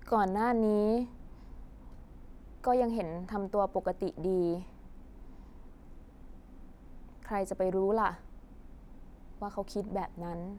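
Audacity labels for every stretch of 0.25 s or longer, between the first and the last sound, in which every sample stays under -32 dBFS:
1.040000	2.640000	silence
4.590000	7.310000	silence
8.110000	9.420000	silence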